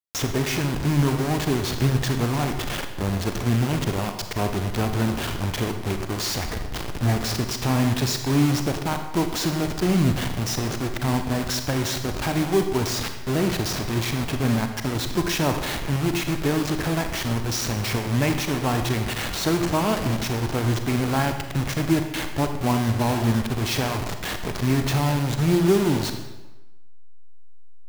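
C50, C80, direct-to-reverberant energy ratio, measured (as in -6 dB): 7.0 dB, 9.0 dB, 6.0 dB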